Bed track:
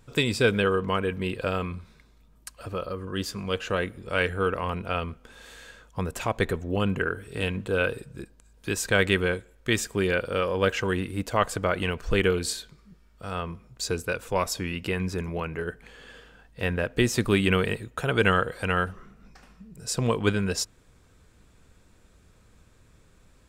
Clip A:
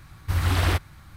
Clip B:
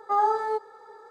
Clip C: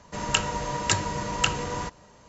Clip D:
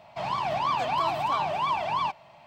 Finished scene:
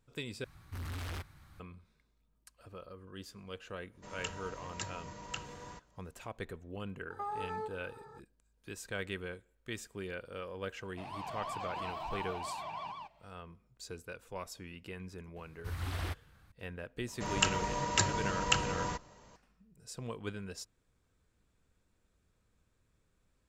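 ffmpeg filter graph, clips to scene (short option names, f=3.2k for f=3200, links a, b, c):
-filter_complex "[1:a]asplit=2[a][b];[3:a]asplit=2[c][d];[0:a]volume=-17dB[e];[a]asoftclip=type=tanh:threshold=-27.5dB[f];[2:a]acompressor=threshold=-30dB:ratio=6:attack=3.2:release=140:knee=1:detection=peak[g];[4:a]aecho=1:1:152:0.708[h];[e]asplit=2[i][j];[i]atrim=end=0.444[k];[f]atrim=end=1.16,asetpts=PTS-STARTPTS,volume=-10.5dB[l];[j]atrim=start=1.596[m];[c]atrim=end=2.28,asetpts=PTS-STARTPTS,volume=-17.5dB,afade=t=in:d=0.1,afade=t=out:st=2.18:d=0.1,adelay=3900[n];[g]atrim=end=1.1,asetpts=PTS-STARTPTS,volume=-6dB,afade=t=in:d=0.004:c=hsin,afade=t=out:st=1.096:d=0.004:c=hsin,adelay=7100[o];[h]atrim=end=2.46,asetpts=PTS-STARTPTS,volume=-16dB,afade=t=in:d=0.004:c=hsin,afade=t=out:st=2.456:d=0.004:c=hsin,adelay=10810[p];[b]atrim=end=1.16,asetpts=PTS-STARTPTS,volume=-15.5dB,afade=t=in:d=0.004:c=hsin,afade=t=out:st=1.156:d=0.004:c=hsin,adelay=15360[q];[d]atrim=end=2.28,asetpts=PTS-STARTPTS,volume=-5dB,afade=t=in:d=0.004:c=hsin,afade=t=out:st=2.276:d=0.004:c=hsin,adelay=17080[r];[k][l]acrossfade=d=0.004:c1=hsin:c2=hsin[s];[s][m]acrossfade=d=0.004:c1=hsin:c2=hsin[t];[t][n][o][p][q][r]amix=inputs=6:normalize=0"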